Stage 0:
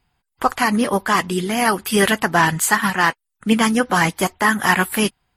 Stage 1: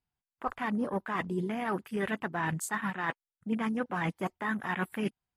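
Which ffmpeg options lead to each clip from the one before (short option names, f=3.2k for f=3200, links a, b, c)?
-af "areverse,acompressor=threshold=-24dB:ratio=5,areverse,equalizer=f=170:w=0.34:g=3,afwtdn=0.02,volume=-7dB"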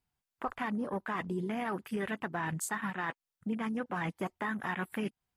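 -af "acompressor=threshold=-35dB:ratio=6,volume=3.5dB"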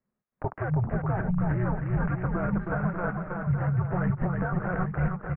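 -af "aemphasis=mode=reproduction:type=bsi,highpass=f=150:t=q:w=0.5412,highpass=f=150:t=q:w=1.307,lowpass=f=2.4k:t=q:w=0.5176,lowpass=f=2.4k:t=q:w=0.7071,lowpass=f=2.4k:t=q:w=1.932,afreqshift=-360,aecho=1:1:320|592|823.2|1020|1187:0.631|0.398|0.251|0.158|0.1,volume=3.5dB"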